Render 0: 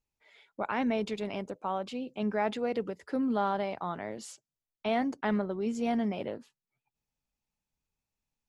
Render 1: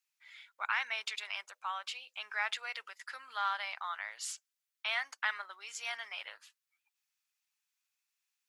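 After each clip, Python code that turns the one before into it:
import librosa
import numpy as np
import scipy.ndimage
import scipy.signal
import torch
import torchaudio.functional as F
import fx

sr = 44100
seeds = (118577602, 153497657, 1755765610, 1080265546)

y = scipy.signal.sosfilt(scipy.signal.butter(4, 1300.0, 'highpass', fs=sr, output='sos'), x)
y = F.gain(torch.from_numpy(y), 6.0).numpy()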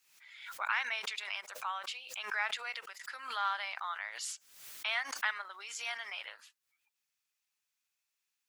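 y = fx.pre_swell(x, sr, db_per_s=74.0)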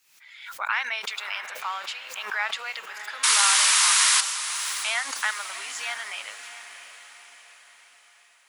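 y = fx.spec_paint(x, sr, seeds[0], shape='noise', start_s=3.23, length_s=0.98, low_hz=900.0, high_hz=11000.0, level_db=-26.0)
y = fx.echo_diffused(y, sr, ms=651, feedback_pct=48, wet_db=-11.0)
y = F.gain(torch.from_numpy(y), 6.5).numpy()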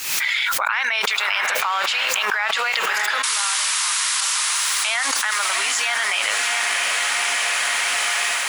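y = fx.env_flatten(x, sr, amount_pct=100)
y = F.gain(torch.from_numpy(y), -3.0).numpy()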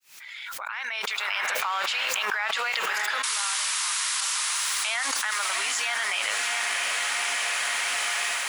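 y = fx.fade_in_head(x, sr, length_s=1.49)
y = F.gain(torch.from_numpy(y), -6.0).numpy()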